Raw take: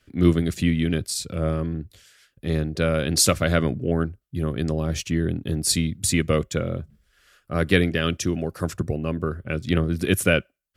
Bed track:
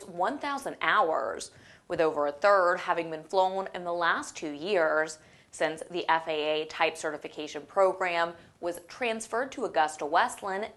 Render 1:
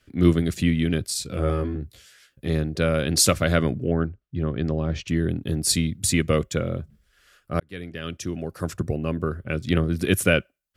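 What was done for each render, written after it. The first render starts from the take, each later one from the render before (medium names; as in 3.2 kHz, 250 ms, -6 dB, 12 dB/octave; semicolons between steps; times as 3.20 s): 1.24–2.48 s: doubling 15 ms -3 dB; 3.88–5.08 s: distance through air 180 m; 7.60–8.92 s: fade in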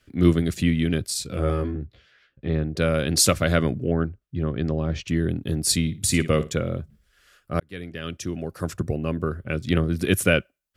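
1.71–2.77 s: distance through air 300 m; 5.81–6.54 s: flutter echo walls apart 9.8 m, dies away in 0.24 s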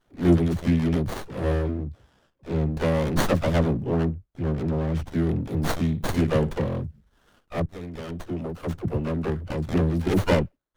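phase dispersion lows, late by 63 ms, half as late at 380 Hz; sliding maximum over 17 samples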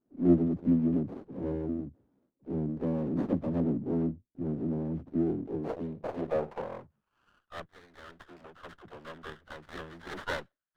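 band-pass sweep 270 Hz -> 1.7 kHz, 5.04–7.58 s; sliding maximum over 9 samples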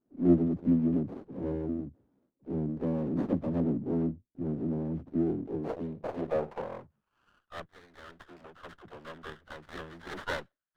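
no audible change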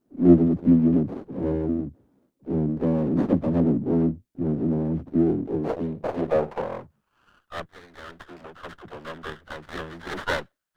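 trim +8 dB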